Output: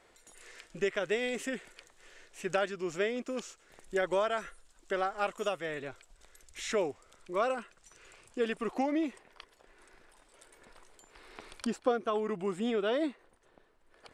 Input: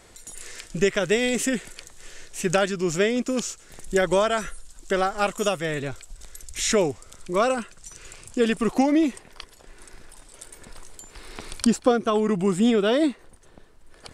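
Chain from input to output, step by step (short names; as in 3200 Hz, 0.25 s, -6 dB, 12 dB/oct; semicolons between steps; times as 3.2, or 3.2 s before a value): tone controls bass -11 dB, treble -10 dB; gain -8 dB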